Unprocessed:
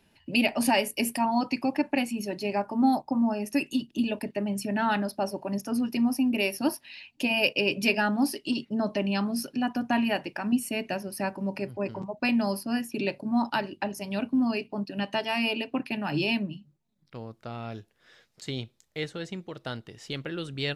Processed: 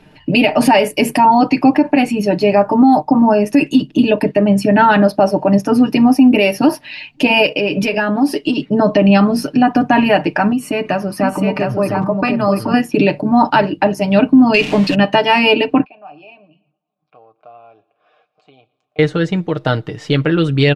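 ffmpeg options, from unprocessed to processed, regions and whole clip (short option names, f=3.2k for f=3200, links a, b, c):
-filter_complex "[0:a]asettb=1/sr,asplit=3[a][b][c];[a]atrim=end=7.464[d];[b]atrim=start=7.46:end=8.65,asetpts=PTS-STARTPTS,afade=t=in:d=0.004:c=qsin,afade=t=out:st=1.186:d=0.004:c=qsin,equalizer=f=110:t=o:w=0.74:g=-7,bandreject=f=4.4k:w=25,acompressor=threshold=-29dB:ratio=6:attack=3.2:release=140:knee=1:detection=peak[e];[c]atrim=start=8.646[f];[d][e]acrossfade=d=0.004:c1=hsin:c2=qsin[g];[g][f]acrossfade=d=0.004:c1=qsin:c2=hsin,asettb=1/sr,asplit=3[h][i][j];[h]atrim=end=10.524[k];[i]atrim=start=10.52:end=12.74,asetpts=PTS-STARTPTS,afade=t=in:d=0.004:c=qsin,afade=t=out:st=2.216:d=0.004:c=qsin,equalizer=f=1.2k:w=6.2:g=12.5,acompressor=threshold=-35dB:ratio=2:attack=3.2:release=140:knee=1:detection=peak,aecho=1:1:708:0.631,atrim=end_sample=97902[l];[j]atrim=start=12.736[m];[k][l]acrossfade=d=0.004:c1=hsin:c2=qsin[n];[n][m]acrossfade=d=0.004:c1=qsin:c2=hsin,asettb=1/sr,asplit=3[o][p][q];[o]atrim=end=14.544[r];[p]atrim=start=14.54:end=14.95,asetpts=PTS-STARTPTS,afade=t=in:d=0.004:c=qsin,afade=t=out:st=0.406:d=0.004:c=qsin,aeval=exprs='val(0)+0.5*0.0119*sgn(val(0))':c=same,lowpass=10k,highshelf=f=1.8k:t=q:w=1.5:g=8[s];[q]atrim=start=14.946[t];[r][s]acrossfade=d=0.004:c1=hsin:c2=qsin[u];[u][t]acrossfade=d=0.004:c1=qsin:c2=hsin,asettb=1/sr,asplit=3[v][w][x];[v]atrim=end=15.844[y];[w]atrim=start=15.84:end=18.99,asetpts=PTS-STARTPTS,afade=t=in:d=0.004:c=qsin,afade=t=out:st=3.146:d=0.004:c=qsin,acompressor=threshold=-54dB:ratio=2:attack=3.2:release=140:knee=1:detection=peak,asplit=3[z][aa][ab];[z]bandpass=f=730:t=q:w=8,volume=0dB[ac];[aa]bandpass=f=1.09k:t=q:w=8,volume=-6dB[ad];[ab]bandpass=f=2.44k:t=q:w=8,volume=-9dB[ae];[ac][ad][ae]amix=inputs=3:normalize=0,aecho=1:1:116|232|348:0.0708|0.0368|0.0191,atrim=end_sample=138915[af];[x]atrim=start=18.986[ag];[y][af]acrossfade=d=0.004:c1=hsin:c2=qsin[ah];[ah][ag]acrossfade=d=0.004:c1=qsin:c2=hsin,lowpass=f=1.6k:p=1,aecho=1:1:6.6:0.57,alimiter=level_in=20dB:limit=-1dB:release=50:level=0:latency=1,volume=-1dB"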